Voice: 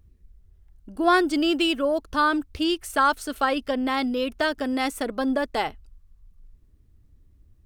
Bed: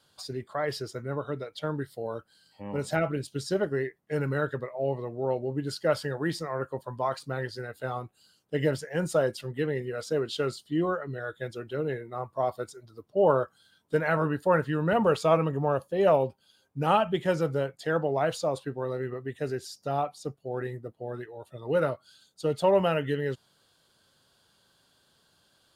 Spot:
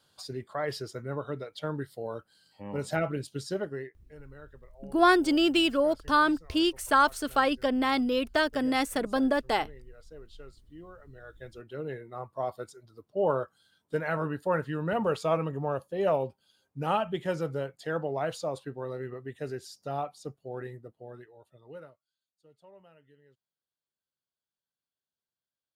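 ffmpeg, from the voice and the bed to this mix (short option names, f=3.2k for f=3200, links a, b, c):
-filter_complex "[0:a]adelay=3950,volume=-1.5dB[a];[1:a]volume=14.5dB,afade=t=out:st=3.29:d=0.86:silence=0.112202,afade=t=in:st=10.93:d=1.13:silence=0.149624,afade=t=out:st=20.44:d=1.54:silence=0.0398107[b];[a][b]amix=inputs=2:normalize=0"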